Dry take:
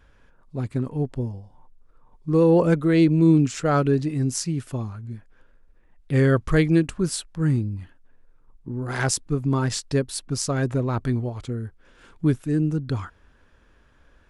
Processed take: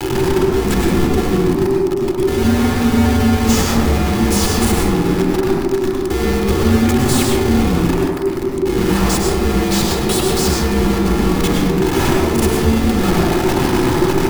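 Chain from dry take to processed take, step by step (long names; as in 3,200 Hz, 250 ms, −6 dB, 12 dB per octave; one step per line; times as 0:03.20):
spike at every zero crossing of −16.5 dBFS
parametric band 160 Hz +14 dB 1.4 octaves
ring modulation 330 Hz
comparator with hysteresis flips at −25 dBFS
frequency shifter −400 Hz
delay with a band-pass on its return 77 ms, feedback 71%, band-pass 690 Hz, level −4.5 dB
convolution reverb RT60 0.70 s, pre-delay 97 ms, DRR 0 dB
level −4.5 dB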